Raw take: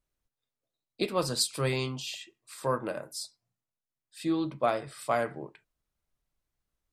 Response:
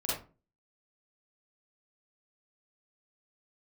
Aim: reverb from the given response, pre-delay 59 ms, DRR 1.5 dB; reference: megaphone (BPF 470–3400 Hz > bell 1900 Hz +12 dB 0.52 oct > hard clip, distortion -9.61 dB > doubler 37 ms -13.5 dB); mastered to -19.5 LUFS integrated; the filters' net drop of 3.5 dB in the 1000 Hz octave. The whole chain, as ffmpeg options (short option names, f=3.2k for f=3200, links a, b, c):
-filter_complex "[0:a]equalizer=f=1k:t=o:g=-6,asplit=2[a][b];[1:a]atrim=start_sample=2205,adelay=59[c];[b][c]afir=irnorm=-1:irlink=0,volume=-7dB[d];[a][d]amix=inputs=2:normalize=0,highpass=470,lowpass=3.4k,equalizer=f=1.9k:t=o:w=0.52:g=12,asoftclip=type=hard:threshold=-28.5dB,asplit=2[e][f];[f]adelay=37,volume=-13.5dB[g];[e][g]amix=inputs=2:normalize=0,volume=15dB"